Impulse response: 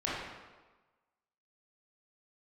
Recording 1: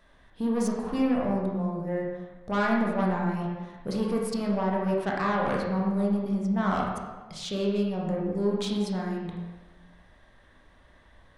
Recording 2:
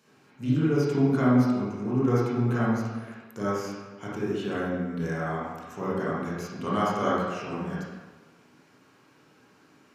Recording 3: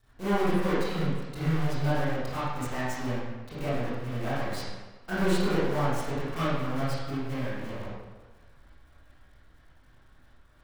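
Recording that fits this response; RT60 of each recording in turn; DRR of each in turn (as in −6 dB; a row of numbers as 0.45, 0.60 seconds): 2; 1.3, 1.3, 1.3 seconds; −2.5, −8.0, −12.5 decibels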